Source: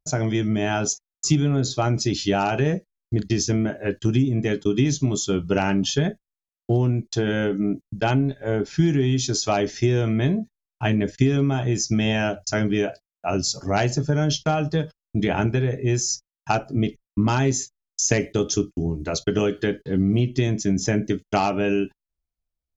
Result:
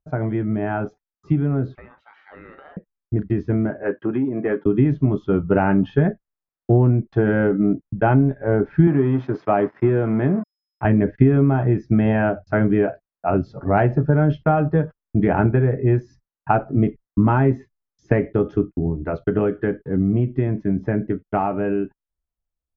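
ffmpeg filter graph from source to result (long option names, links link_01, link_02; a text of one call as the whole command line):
ffmpeg -i in.wav -filter_complex "[0:a]asettb=1/sr,asplit=3[link_01][link_02][link_03];[link_01]atrim=end=1.754[link_04];[link_02]atrim=start=1.75:end=2.77,asetpts=PTS-STARTPTS,afade=type=in:duration=0.004:curve=qsin,afade=type=out:start_time=1.016:duration=0.004:curve=qsin,highpass=1200,acompressor=threshold=-35dB:ratio=3:attack=3.2:release=140:knee=1:detection=peak,aeval=exprs='val(0)*sin(2*PI*1200*n/s)':channel_layout=same[link_05];[link_03]atrim=start=2.766[link_06];[link_04][link_05]acrossfade=duration=0.004:curve1=hsin:curve2=qsin[link_07];[link_07][link_06]acrossfade=duration=0.004:curve1=qsin:curve2=hsin,asettb=1/sr,asplit=3[link_08][link_09][link_10];[link_08]atrim=end=3.834[link_11];[link_09]atrim=start=3.83:end=4.66,asetpts=PTS-STARTPTS,afade=type=in:duration=0.004:curve=qsin,afade=type=out:start_time=0.826:duration=0.004:curve=qsin,highpass=210,asplit=2[link_12][link_13];[link_13]highpass=frequency=720:poles=1,volume=12dB,asoftclip=type=tanh:threshold=-11.5dB[link_14];[link_12][link_14]amix=inputs=2:normalize=0,lowpass=frequency=1600:poles=1,volume=-6dB[link_15];[link_10]atrim=start=4.656[link_16];[link_11][link_15]acrossfade=duration=0.004:curve1=hsin:curve2=qsin[link_17];[link_17][link_16]acrossfade=duration=0.004:curve1=qsin:curve2=hsin,asettb=1/sr,asplit=3[link_18][link_19][link_20];[link_18]atrim=end=8.874[link_21];[link_19]atrim=start=8.87:end=10.85,asetpts=PTS-STARTPTS,afade=type=in:duration=0.004:curve=qsin,afade=type=out:start_time=1.976:duration=0.004:curve=qsin,aeval=exprs='sgn(val(0))*max(abs(val(0))-0.0133,0)':channel_layout=same,highpass=140,aeval=exprs='val(0)+0.00355*sin(2*PI*5100*n/s)':channel_layout=same[link_22];[link_20]atrim=start=10.846[link_23];[link_21][link_22]acrossfade=duration=0.004:curve1=hsin:curve2=qsin[link_24];[link_24][link_23]acrossfade=duration=0.004:curve1=qsin:curve2=hsin,dynaudnorm=framelen=560:gausssize=17:maxgain=11.5dB,lowpass=frequency=1700:width=0.5412,lowpass=frequency=1700:width=1.3066" out.wav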